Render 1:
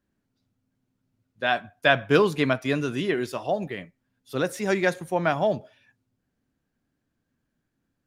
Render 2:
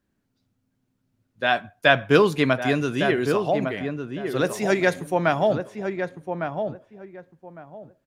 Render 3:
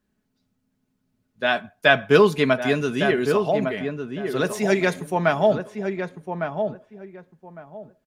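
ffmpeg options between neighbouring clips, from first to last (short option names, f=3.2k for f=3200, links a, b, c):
-filter_complex "[0:a]asplit=2[a][b];[b]adelay=1156,lowpass=f=1.4k:p=1,volume=-6dB,asplit=2[c][d];[d]adelay=1156,lowpass=f=1.4k:p=1,volume=0.22,asplit=2[e][f];[f]adelay=1156,lowpass=f=1.4k:p=1,volume=0.22[g];[a][c][e][g]amix=inputs=4:normalize=0,volume=2.5dB"
-af "aecho=1:1:4.7:0.44"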